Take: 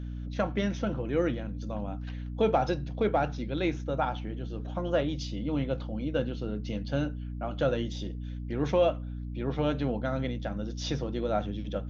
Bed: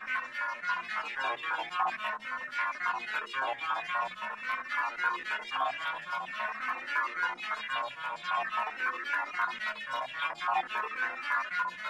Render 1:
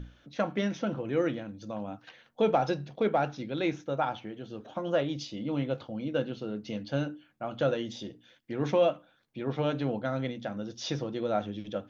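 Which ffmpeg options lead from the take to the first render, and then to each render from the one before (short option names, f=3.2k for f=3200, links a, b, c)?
-af "bandreject=f=60:t=h:w=6,bandreject=f=120:t=h:w=6,bandreject=f=180:t=h:w=6,bandreject=f=240:t=h:w=6,bandreject=f=300:t=h:w=6"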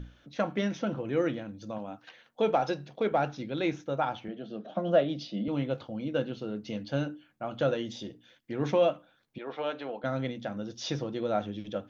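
-filter_complex "[0:a]asettb=1/sr,asplit=3[a][b][c];[a]atrim=end=1.784[d];[b]atrim=start=1.78:end=3.12,asetpts=PTS-STARTPTS,afade=t=in:d=0.004:c=qsin,afade=t=out:st=1.336:d=0.004:c=qsin,lowshelf=f=150:g=-10[e];[c]atrim=start=3.116[f];[d][e]acrossfade=d=0.004:c1=hsin:c2=qsin[g];[g][f]acrossfade=d=0.004:c1=qsin:c2=hsin,asettb=1/sr,asplit=3[h][i][j];[h]atrim=end=4.284[k];[i]atrim=start=4.28:end=5.48,asetpts=PTS-STARTPTS,afade=t=in:d=0.004:c=qsin,afade=t=out:st=1.196:d=0.004:c=qsin,highpass=f=150:w=0.5412,highpass=f=150:w=1.3066,equalizer=f=190:t=q:w=4:g=10,equalizer=f=650:t=q:w=4:g=9,equalizer=f=940:t=q:w=4:g=-7,equalizer=f=2.3k:t=q:w=4:g=-3,lowpass=f=5k:w=0.5412,lowpass=f=5k:w=1.3066[l];[j]atrim=start=5.476[m];[k][l]acrossfade=d=0.004:c1=hsin:c2=qsin[n];[n][m]acrossfade=d=0.004:c1=qsin:c2=hsin,asettb=1/sr,asplit=3[o][p][q];[o]atrim=end=9.384[r];[p]atrim=start=9.38:end=10.04,asetpts=PTS-STARTPTS,afade=t=in:d=0.004:c=qsin,afade=t=out:st=0.656:d=0.004:c=qsin,highpass=500,lowpass=4k[s];[q]atrim=start=10.036[t];[r][s]acrossfade=d=0.004:c1=hsin:c2=qsin[u];[u][t]acrossfade=d=0.004:c1=qsin:c2=hsin"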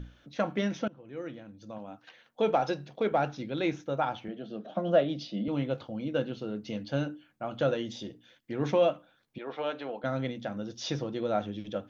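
-filter_complex "[0:a]asplit=2[a][b];[a]atrim=end=0.88,asetpts=PTS-STARTPTS,afade=t=out:st=0.876:d=0.004:c=hsin:silence=0.0841395[c];[b]atrim=start=0.88,asetpts=PTS-STARTPTS,afade=t=in:d=1.6:silence=0.0841395[d];[c][d]concat=n=2:v=0:a=1"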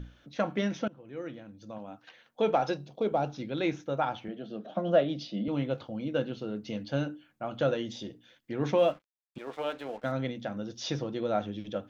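-filter_complex "[0:a]asettb=1/sr,asplit=3[a][b][c];[a]atrim=end=2.774[d];[b]atrim=start=2.77:end=3.35,asetpts=PTS-STARTPTS,afade=t=in:d=0.004:c=qsin,afade=t=out:st=0.576:d=0.004:c=qsin,equalizer=f=1.8k:w=1.5:g=-13[e];[c]atrim=start=3.346[f];[d][e]acrossfade=d=0.004:c1=hsin:c2=qsin[g];[g][f]acrossfade=d=0.004:c1=qsin:c2=hsin,asettb=1/sr,asplit=3[h][i][j];[h]atrim=end=8.784[k];[i]atrim=start=8.78:end=10.12,asetpts=PTS-STARTPTS,afade=t=in:d=0.004:c=qsin,afade=t=out:st=1.336:d=0.004:c=qsin,aeval=exprs='sgn(val(0))*max(abs(val(0))-0.00237,0)':c=same[l];[j]atrim=start=10.116[m];[k][l]acrossfade=d=0.004:c1=hsin:c2=qsin[n];[n][m]acrossfade=d=0.004:c1=qsin:c2=hsin"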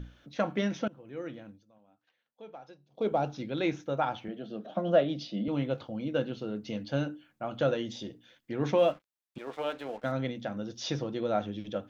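-filter_complex "[0:a]asplit=3[a][b][c];[a]atrim=end=1.64,asetpts=PTS-STARTPTS,afade=t=out:st=1.49:d=0.15:silence=0.0891251[d];[b]atrim=start=1.64:end=2.9,asetpts=PTS-STARTPTS,volume=-21dB[e];[c]atrim=start=2.9,asetpts=PTS-STARTPTS,afade=t=in:d=0.15:silence=0.0891251[f];[d][e][f]concat=n=3:v=0:a=1"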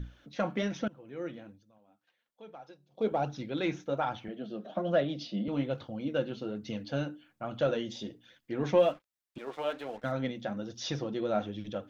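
-filter_complex "[0:a]asplit=2[a][b];[b]asoftclip=type=tanh:threshold=-21.5dB,volume=-5.5dB[c];[a][c]amix=inputs=2:normalize=0,flanger=delay=0.5:depth=5.2:regen=55:speed=1.2:shape=sinusoidal"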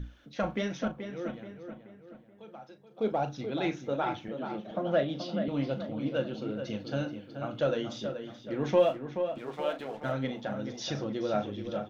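-filter_complex "[0:a]asplit=2[a][b];[b]adelay=37,volume=-11.5dB[c];[a][c]amix=inputs=2:normalize=0,asplit=2[d][e];[e]adelay=429,lowpass=f=2.7k:p=1,volume=-8dB,asplit=2[f][g];[g]adelay=429,lowpass=f=2.7k:p=1,volume=0.46,asplit=2[h][i];[i]adelay=429,lowpass=f=2.7k:p=1,volume=0.46,asplit=2[j][k];[k]adelay=429,lowpass=f=2.7k:p=1,volume=0.46,asplit=2[l][m];[m]adelay=429,lowpass=f=2.7k:p=1,volume=0.46[n];[f][h][j][l][n]amix=inputs=5:normalize=0[o];[d][o]amix=inputs=2:normalize=0"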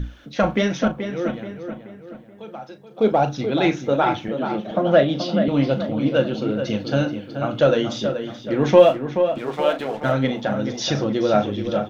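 -af "volume=12dB"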